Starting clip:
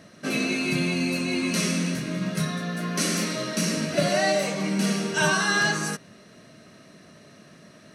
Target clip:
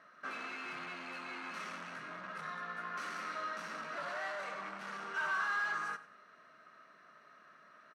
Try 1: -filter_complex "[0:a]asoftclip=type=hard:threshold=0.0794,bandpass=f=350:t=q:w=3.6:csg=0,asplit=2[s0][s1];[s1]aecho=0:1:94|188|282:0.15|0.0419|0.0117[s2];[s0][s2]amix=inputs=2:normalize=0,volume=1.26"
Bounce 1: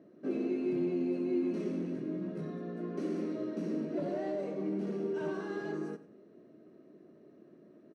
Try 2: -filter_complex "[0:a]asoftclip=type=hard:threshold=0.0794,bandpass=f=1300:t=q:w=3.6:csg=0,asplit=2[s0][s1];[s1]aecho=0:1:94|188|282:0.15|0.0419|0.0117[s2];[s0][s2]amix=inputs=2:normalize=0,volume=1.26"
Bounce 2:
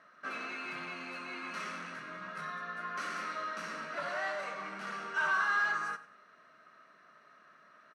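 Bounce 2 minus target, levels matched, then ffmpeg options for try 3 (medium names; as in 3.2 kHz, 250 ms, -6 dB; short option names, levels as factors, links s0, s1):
hard clipper: distortion -5 dB
-filter_complex "[0:a]asoftclip=type=hard:threshold=0.0398,bandpass=f=1300:t=q:w=3.6:csg=0,asplit=2[s0][s1];[s1]aecho=0:1:94|188|282:0.15|0.0419|0.0117[s2];[s0][s2]amix=inputs=2:normalize=0,volume=1.26"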